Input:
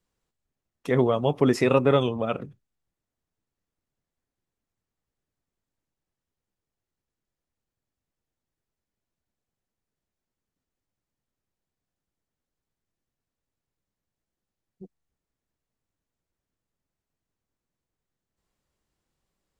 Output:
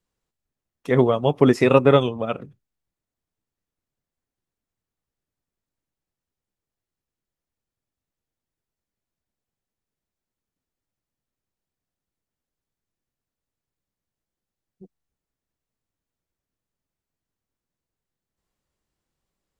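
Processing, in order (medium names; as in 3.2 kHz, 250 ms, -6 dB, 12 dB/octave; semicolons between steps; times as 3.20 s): upward expansion 1.5:1, over -31 dBFS; trim +6 dB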